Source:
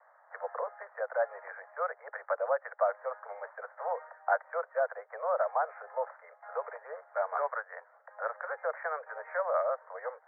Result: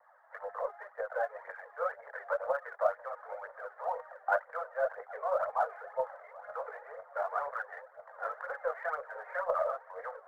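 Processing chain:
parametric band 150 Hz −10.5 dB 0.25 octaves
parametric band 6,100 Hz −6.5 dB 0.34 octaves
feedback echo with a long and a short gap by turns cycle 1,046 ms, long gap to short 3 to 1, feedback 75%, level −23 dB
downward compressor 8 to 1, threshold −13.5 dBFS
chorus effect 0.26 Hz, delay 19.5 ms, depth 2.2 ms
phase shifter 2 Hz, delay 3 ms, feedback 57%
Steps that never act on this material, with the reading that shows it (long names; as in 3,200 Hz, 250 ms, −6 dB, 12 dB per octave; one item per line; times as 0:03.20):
parametric band 150 Hz: nothing at its input below 400 Hz
parametric band 6,100 Hz: nothing at its input above 2,000 Hz
downward compressor, threshold −13.5 dBFS: peak of its input −16.0 dBFS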